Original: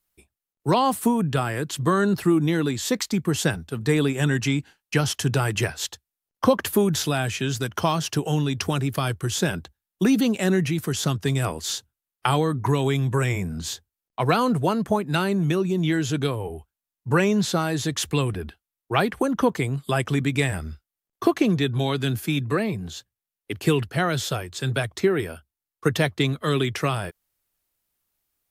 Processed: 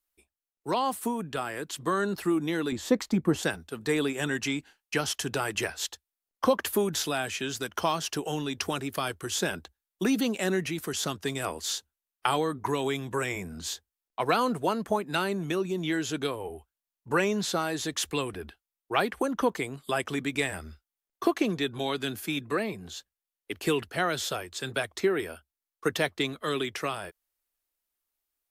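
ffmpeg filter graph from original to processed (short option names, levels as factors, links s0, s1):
-filter_complex "[0:a]asettb=1/sr,asplit=3[s0][s1][s2];[s0]atrim=end=2.724[s3];[s1]atrim=start=2.72:end=3.43,asetpts=PTS-STARTPTS,afade=t=in:d=0.004:c=qsin,afade=t=out:st=0.706:d=0.004:c=qsin,tiltshelf=f=1400:g=8,bandreject=f=410:w=6.4[s4];[s2]atrim=start=3.426[s5];[s3][s4]acrossfade=d=0.004:c1=hsin:c2=qsin[s6];[s6][s5]acrossfade=d=0.004:c1=qsin:c2=hsin,equalizer=f=120:w=1.1:g=-14.5,dynaudnorm=f=130:g=31:m=1.58,volume=0.473"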